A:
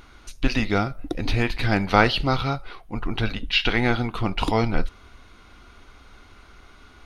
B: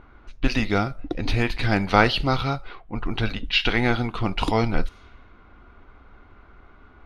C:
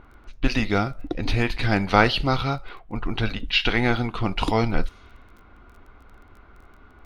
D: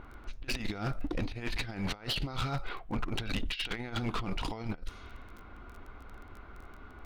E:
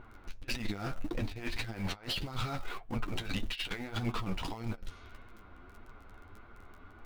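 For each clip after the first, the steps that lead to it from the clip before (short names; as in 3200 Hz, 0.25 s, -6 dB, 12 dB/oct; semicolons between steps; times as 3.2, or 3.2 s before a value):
low-pass opened by the level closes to 1400 Hz, open at -19 dBFS
crackle 23/s -43 dBFS
negative-ratio compressor -27 dBFS, ratio -0.5; overloaded stage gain 23 dB; gain -4.5 dB
in parallel at -12 dB: bit-crush 6-bit; on the sum: flange 1.7 Hz, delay 8 ms, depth 4.1 ms, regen +31%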